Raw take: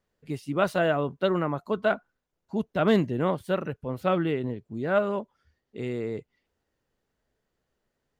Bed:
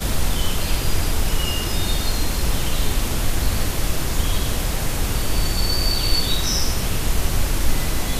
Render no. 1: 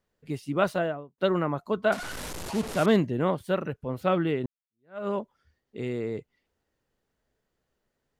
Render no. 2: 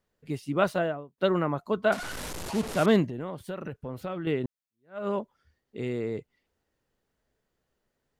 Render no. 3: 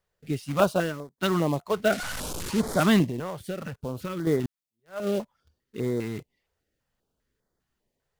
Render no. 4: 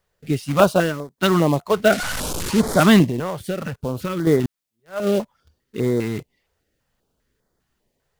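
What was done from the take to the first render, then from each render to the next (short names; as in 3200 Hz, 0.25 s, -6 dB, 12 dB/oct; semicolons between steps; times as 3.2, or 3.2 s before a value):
0.62–1.18 studio fade out; 1.92–2.86 delta modulation 64 kbps, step -30 dBFS; 4.46–5.07 fade in exponential
3.07–4.27 compressor, threshold -31 dBFS
in parallel at -4 dB: companded quantiser 4-bit; on the sum: stepped notch 5 Hz 260–2700 Hz
gain +7.5 dB; limiter -1 dBFS, peak gain reduction 1 dB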